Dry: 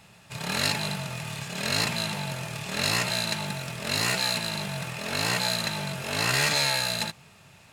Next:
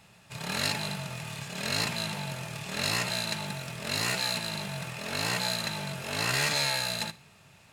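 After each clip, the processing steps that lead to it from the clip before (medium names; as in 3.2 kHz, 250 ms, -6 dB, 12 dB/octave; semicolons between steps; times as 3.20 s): Schroeder reverb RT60 0.43 s, DRR 19 dB; trim -3.5 dB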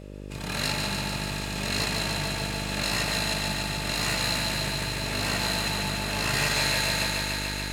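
thinning echo 145 ms, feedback 85%, high-pass 170 Hz, level -4.5 dB; mains buzz 50 Hz, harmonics 12, -43 dBFS -3 dB/octave; spring tank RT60 3.5 s, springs 40 ms, chirp 25 ms, DRR 9.5 dB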